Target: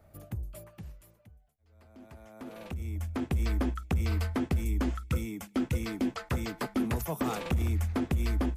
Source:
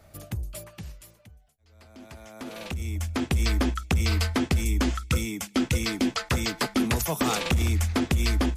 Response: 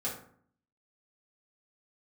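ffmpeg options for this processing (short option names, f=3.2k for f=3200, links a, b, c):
-af "equalizer=f=5.2k:w=0.43:g=-11,volume=-4.5dB"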